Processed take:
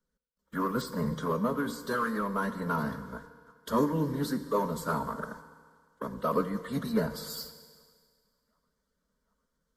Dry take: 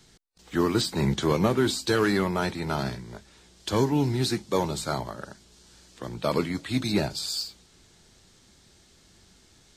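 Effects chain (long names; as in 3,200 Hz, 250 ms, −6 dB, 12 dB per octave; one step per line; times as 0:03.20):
flat-topped bell 5,500 Hz −12 dB
delay with a band-pass on its return 756 ms, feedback 63%, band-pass 1,600 Hz, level −23.5 dB
harmonic and percussive parts rebalanced percussive +6 dB
noise gate −44 dBFS, range −20 dB
phaser with its sweep stopped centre 470 Hz, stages 8
phase-vocoder pitch shift with formants kept +1.5 semitones
in parallel at −11.5 dB: soft clipping −29 dBFS, distortion −6 dB
on the sum: speech leveller within 4 dB 0.5 s
on a send at −10 dB: convolution reverb RT60 1.8 s, pre-delay 3 ms
on the sum: level −5.5 dB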